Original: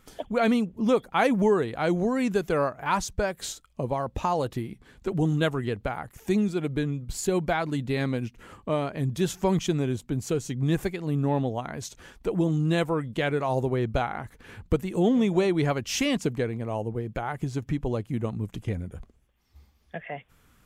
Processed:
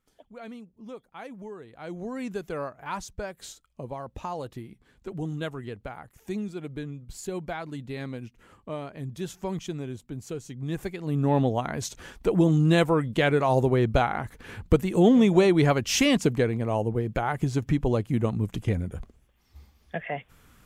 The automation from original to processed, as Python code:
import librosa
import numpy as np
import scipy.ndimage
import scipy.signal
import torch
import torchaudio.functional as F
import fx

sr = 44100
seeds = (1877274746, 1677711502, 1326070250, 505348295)

y = fx.gain(x, sr, db=fx.line((1.58, -19.0), (2.15, -8.0), (10.62, -8.0), (11.42, 4.0)))